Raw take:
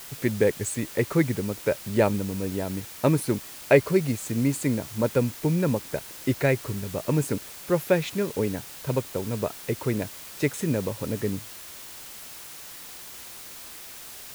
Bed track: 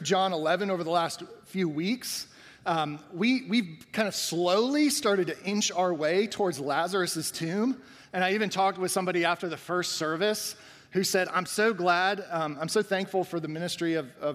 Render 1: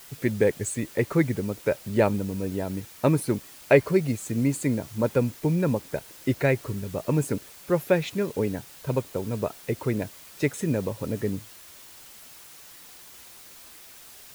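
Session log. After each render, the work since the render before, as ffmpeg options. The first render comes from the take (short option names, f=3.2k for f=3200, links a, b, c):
-af "afftdn=nr=6:nf=-42"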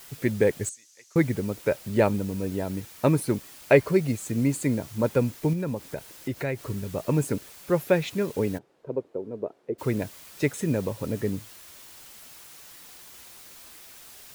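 -filter_complex "[0:a]asettb=1/sr,asplit=3[a][b][c];[a]atrim=end=0.694[d];[b]atrim=start=0.69:end=1.16,asetpts=PTS-STARTPTS,afade=t=in:d=0.004:c=qsin,afade=t=out:st=0.466:d=0.004:c=qsin,bandpass=f=6.2k:t=q:w=3.8[e];[c]atrim=start=1.156[f];[d][e]acrossfade=d=0.004:c1=hsin:c2=qsin[g];[g][f]acrossfade=d=0.004:c1=qsin:c2=hsin,asettb=1/sr,asplit=3[h][i][j];[h]atrim=end=5.534[k];[i]atrim=start=5.53:end=6.7,asetpts=PTS-STARTPTS,afade=t=in:d=0.004:c=qsin,afade=t=out:st=1.166:d=0.004:c=qsin,acompressor=threshold=-30dB:ratio=2:attack=3.2:release=140:knee=1:detection=peak[l];[j]atrim=start=6.696[m];[k][l]acrossfade=d=0.004:c1=hsin:c2=qsin[n];[n][m]acrossfade=d=0.004:c1=qsin:c2=hsin,asplit=3[o][p][q];[o]afade=t=out:st=8.57:d=0.02[r];[p]bandpass=f=400:t=q:w=1.8,afade=t=in:st=8.57:d=0.02,afade=t=out:st=9.78:d=0.02[s];[q]afade=t=in:st=9.78:d=0.02[t];[r][s][t]amix=inputs=3:normalize=0"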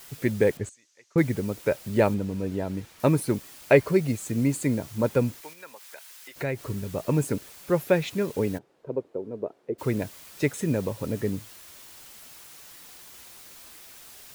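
-filter_complex "[0:a]asettb=1/sr,asplit=3[a][b][c];[a]atrim=end=0.574[d];[b]atrim=start=0.57:end=1.18,asetpts=PTS-STARTPTS,afade=t=in:d=0.004:c=qsin,afade=t=out:st=0.606:d=0.004:c=qsin,aemphasis=mode=reproduction:type=75kf[e];[c]atrim=start=1.176[f];[d][e]acrossfade=d=0.004:c1=hsin:c2=qsin[g];[g][f]acrossfade=d=0.004:c1=qsin:c2=hsin,asettb=1/sr,asplit=3[h][i][j];[h]atrim=end=2.144[k];[i]atrim=start=2.14:end=3,asetpts=PTS-STARTPTS,afade=t=in:d=0.004:c=qsin,afade=t=out:st=0.856:d=0.004:c=qsin,lowpass=f=3.9k:p=1[l];[j]atrim=start=2.996[m];[k][l]acrossfade=d=0.004:c1=hsin:c2=qsin[n];[n][m]acrossfade=d=0.004:c1=qsin:c2=hsin,asettb=1/sr,asplit=3[o][p][q];[o]atrim=end=5.414[r];[p]atrim=start=5.41:end=6.36,asetpts=PTS-STARTPTS,afade=t=in:d=0.004:c=qsin,afade=t=out:st=0.946:d=0.004:c=qsin,highpass=1.2k[s];[q]atrim=start=6.356[t];[r][s]acrossfade=d=0.004:c1=hsin:c2=qsin[u];[u][t]acrossfade=d=0.004:c1=qsin:c2=hsin"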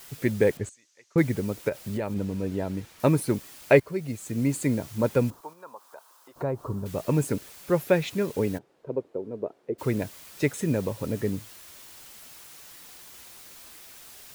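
-filter_complex "[0:a]asplit=3[a][b][c];[a]afade=t=out:st=1.68:d=0.02[d];[b]acompressor=threshold=-26dB:ratio=6:attack=3.2:release=140:knee=1:detection=peak,afade=t=in:st=1.68:d=0.02,afade=t=out:st=2.15:d=0.02[e];[c]afade=t=in:st=2.15:d=0.02[f];[d][e][f]amix=inputs=3:normalize=0,asettb=1/sr,asplit=3[g][h][i];[g]atrim=end=5.304[j];[h]atrim=start=5.3:end=6.86,asetpts=PTS-STARTPTS,afade=t=in:d=0.004:c=qsin,afade=t=out:st=1.556:d=0.004:c=qsin,highshelf=f=1.5k:t=q:w=3:g=-11[k];[i]atrim=start=6.856[l];[j][k]acrossfade=d=0.004:c1=hsin:c2=qsin[m];[m][l]acrossfade=d=0.004:c1=qsin:c2=hsin,asplit=2[n][o];[n]atrim=end=3.8,asetpts=PTS-STARTPTS,afade=t=out:st=3.796:d=0.004:c=hsin:silence=0.199526[p];[o]atrim=start=3.8,asetpts=PTS-STARTPTS,afade=t=in:d=0.79:silence=0.199526[q];[p][q]concat=n=2:v=0:a=1"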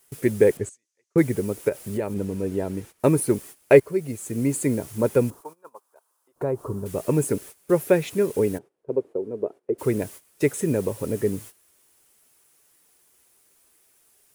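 -af "agate=range=-17dB:threshold=-42dB:ratio=16:detection=peak,equalizer=f=400:t=o:w=0.67:g=7,equalizer=f=4k:t=o:w=0.67:g=-4,equalizer=f=10k:t=o:w=0.67:g=9"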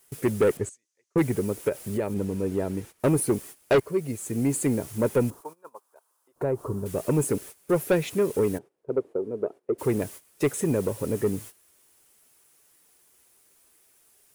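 -af "asoftclip=type=tanh:threshold=-15dB"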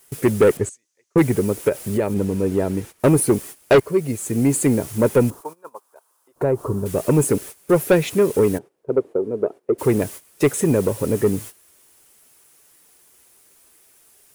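-af "volume=7dB"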